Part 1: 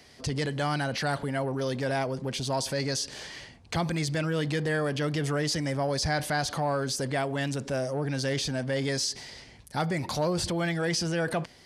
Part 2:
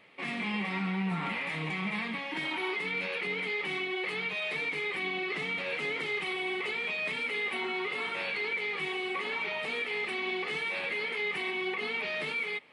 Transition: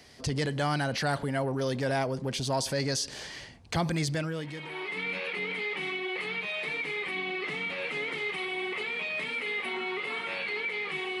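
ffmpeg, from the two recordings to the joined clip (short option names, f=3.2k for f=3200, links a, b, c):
-filter_complex "[0:a]apad=whole_dur=11.2,atrim=end=11.2,atrim=end=5,asetpts=PTS-STARTPTS[a];[1:a]atrim=start=1.96:end=9.08,asetpts=PTS-STARTPTS[b];[a][b]acrossfade=d=0.92:c1=qua:c2=qua"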